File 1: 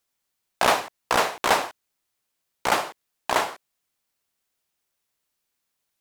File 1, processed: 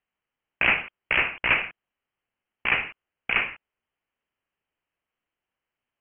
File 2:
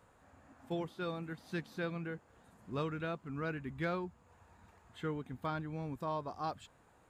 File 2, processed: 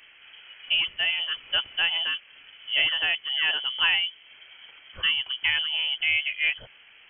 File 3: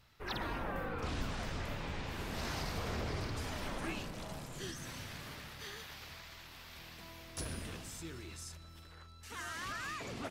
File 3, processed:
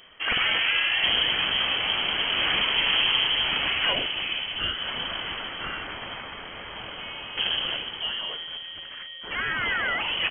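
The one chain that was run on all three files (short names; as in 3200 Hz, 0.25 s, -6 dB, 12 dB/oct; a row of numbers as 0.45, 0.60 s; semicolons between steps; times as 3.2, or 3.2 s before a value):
HPF 61 Hz; inverted band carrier 3200 Hz; match loudness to -24 LUFS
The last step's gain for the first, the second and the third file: -1.0, +13.0, +15.5 dB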